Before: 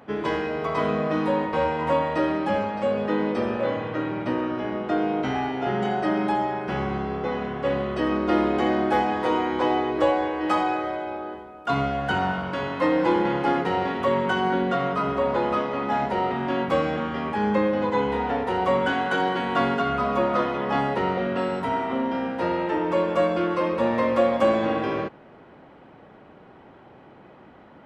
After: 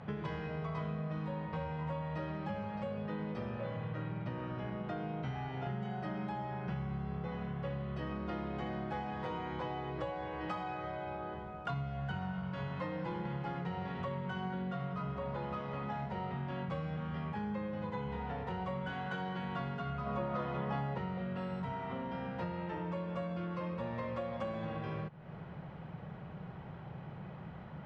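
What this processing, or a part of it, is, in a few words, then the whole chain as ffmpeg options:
jukebox: -filter_complex "[0:a]lowpass=5700,lowshelf=frequency=210:width_type=q:width=3:gain=8.5,acompressor=threshold=-36dB:ratio=5,asettb=1/sr,asplit=3[link_01][link_02][link_03];[link_01]atrim=end=20.064[link_04];[link_02]atrim=start=20.06:end=20.98,asetpts=PTS-STARTPTS,afade=type=in:duration=0.004:curve=qsin,afade=type=out:start_time=0.916:duration=0.004:curve=qsin,equalizer=frequency=510:width=0.38:gain=4[link_05];[link_03]atrim=start=20.976[link_06];[link_04][link_05]acrossfade=duration=0.004:curve1=hsin:curve2=qsin[link_07];[link_07][link_06]acrossfade=duration=0.004:curve1=qsin:curve2=hsin,volume=-2dB"

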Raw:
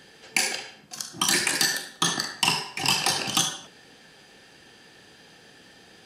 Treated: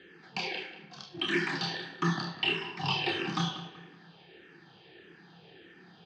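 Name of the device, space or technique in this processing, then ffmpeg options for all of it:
barber-pole phaser into a guitar amplifier: -filter_complex "[0:a]asplit=2[link_01][link_02];[link_02]adelay=29,volume=-6.5dB[link_03];[link_01][link_03]amix=inputs=2:normalize=0,asplit=2[link_04][link_05];[link_05]afreqshift=-1.6[link_06];[link_04][link_06]amix=inputs=2:normalize=1,asoftclip=type=tanh:threshold=-17.5dB,highpass=79,equalizer=frequency=170:width_type=q:width=4:gain=9,equalizer=frequency=240:width_type=q:width=4:gain=-5,equalizer=frequency=360:width_type=q:width=4:gain=9,equalizer=frequency=570:width_type=q:width=4:gain=-5,lowpass=frequency=3800:width=0.5412,lowpass=frequency=3800:width=1.3066,asplit=2[link_07][link_08];[link_08]adelay=189,lowpass=frequency=3200:poles=1,volume=-12dB,asplit=2[link_09][link_10];[link_10]adelay=189,lowpass=frequency=3200:poles=1,volume=0.38,asplit=2[link_11][link_12];[link_12]adelay=189,lowpass=frequency=3200:poles=1,volume=0.38,asplit=2[link_13][link_14];[link_14]adelay=189,lowpass=frequency=3200:poles=1,volume=0.38[link_15];[link_07][link_09][link_11][link_13][link_15]amix=inputs=5:normalize=0,volume=-2dB"

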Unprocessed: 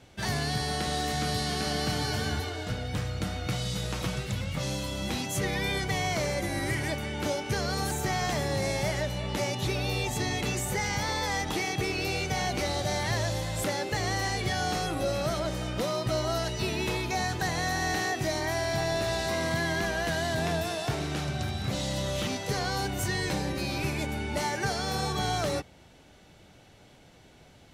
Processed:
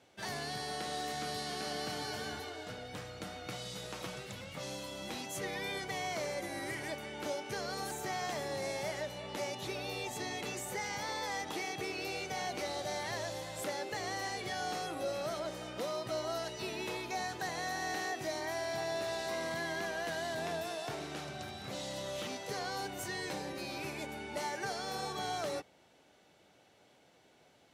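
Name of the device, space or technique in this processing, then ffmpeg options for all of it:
filter by subtraction: -filter_complex "[0:a]asplit=2[link_01][link_02];[link_02]lowpass=500,volume=-1[link_03];[link_01][link_03]amix=inputs=2:normalize=0,volume=-8.5dB"

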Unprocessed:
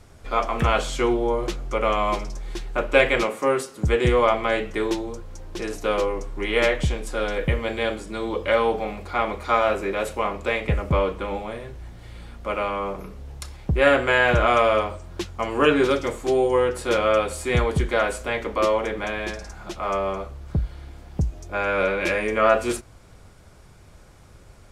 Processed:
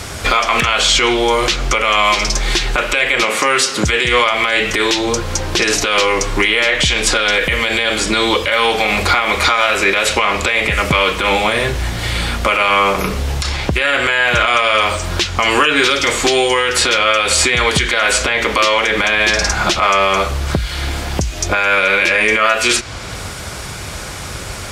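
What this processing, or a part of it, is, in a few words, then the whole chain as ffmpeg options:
mastering chain: -filter_complex "[0:a]highpass=45,equalizer=frequency=3700:width_type=o:width=2.6:gain=3,acrossover=split=1500|6900[link_01][link_02][link_03];[link_01]acompressor=threshold=-34dB:ratio=4[link_04];[link_02]acompressor=threshold=-31dB:ratio=4[link_05];[link_03]acompressor=threshold=-59dB:ratio=4[link_06];[link_04][link_05][link_06]amix=inputs=3:normalize=0,acompressor=threshold=-34dB:ratio=2.5,tiltshelf=frequency=970:gain=-4,alimiter=level_in=26dB:limit=-1dB:release=50:level=0:latency=1,volume=-1.5dB"

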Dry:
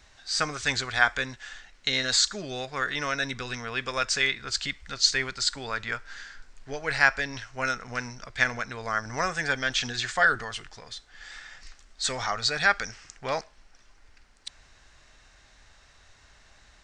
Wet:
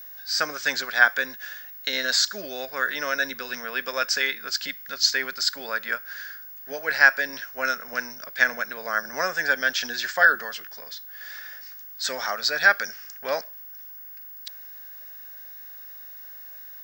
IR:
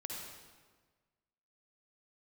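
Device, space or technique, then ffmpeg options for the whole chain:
old television with a line whistle: -af "highpass=frequency=200:width=0.5412,highpass=frequency=200:width=1.3066,equalizer=frequency=570:width_type=q:width=4:gain=8,equalizer=frequency=1600:width_type=q:width=4:gain=9,equalizer=frequency=5200:width_type=q:width=4:gain=8,lowpass=frequency=7900:width=0.5412,lowpass=frequency=7900:width=1.3066,aeval=exprs='val(0)+0.0141*sin(2*PI*15625*n/s)':channel_layout=same,volume=-2dB"

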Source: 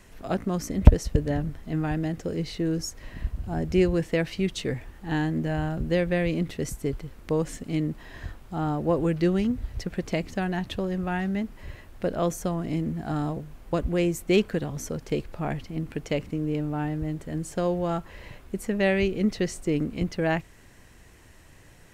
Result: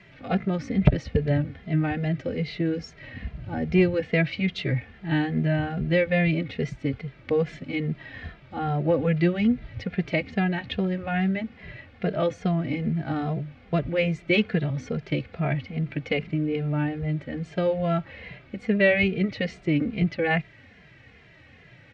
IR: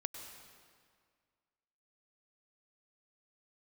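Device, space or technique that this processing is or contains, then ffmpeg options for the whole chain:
barber-pole flanger into a guitar amplifier: -filter_complex "[0:a]asplit=2[link_01][link_02];[link_02]adelay=2.5,afreqshift=-2.4[link_03];[link_01][link_03]amix=inputs=2:normalize=1,asoftclip=type=tanh:threshold=-9dB,highpass=93,equalizer=frequency=130:width_type=q:width=4:gain=4,equalizer=frequency=350:width_type=q:width=4:gain=-6,equalizer=frequency=990:width_type=q:width=4:gain=-9,equalizer=frequency=2200:width_type=q:width=4:gain=7,lowpass=frequency=4000:width=0.5412,lowpass=frequency=4000:width=1.3066,volume=6dB"

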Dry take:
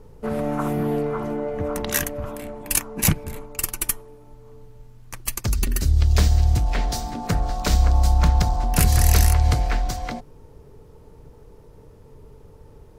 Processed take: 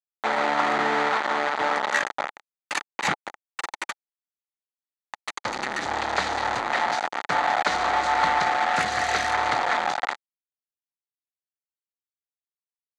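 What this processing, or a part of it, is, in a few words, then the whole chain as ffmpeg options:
hand-held game console: -filter_complex "[0:a]agate=range=-33dB:threshold=-36dB:ratio=3:detection=peak,acrusher=bits=3:mix=0:aa=0.000001,highpass=410,equalizer=frequency=420:width_type=q:width=4:gain=-4,equalizer=frequency=840:width_type=q:width=4:gain=9,equalizer=frequency=1300:width_type=q:width=4:gain=6,equalizer=frequency=1900:width_type=q:width=4:gain=7,equalizer=frequency=2800:width_type=q:width=4:gain=-4,equalizer=frequency=5300:width_type=q:width=4:gain=-10,lowpass=frequency=5600:width=0.5412,lowpass=frequency=5600:width=1.3066,asettb=1/sr,asplit=3[link_01][link_02][link_03];[link_01]atrim=end=8.424[link_04];[link_02]atrim=start=8.42:end=9.28,asetpts=PTS-STARTPTS,afade=type=in:duration=0.004:curve=qsin,afade=type=out:start_time=0.856:duration=0.004:curve=qsin,bandreject=frequency=980:width=7.1[link_05];[link_03]atrim=start=9.276[link_06];[link_04][link_05]acrossfade=duration=0.004:curve1=hsin:curve2=qsin[link_07];[link_07][link_06]acrossfade=duration=0.004:curve1=qsin:curve2=hsin"

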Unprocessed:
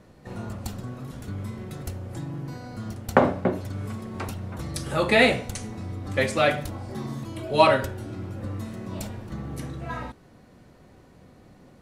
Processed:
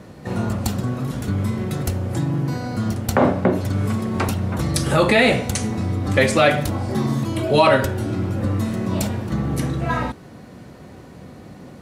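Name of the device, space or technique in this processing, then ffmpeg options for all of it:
mastering chain: -af "highpass=58,equalizer=frequency=190:width_type=o:width=1.4:gain=2,acompressor=threshold=-27dB:ratio=1.5,alimiter=level_in=14.5dB:limit=-1dB:release=50:level=0:latency=1,volume=-3.5dB"

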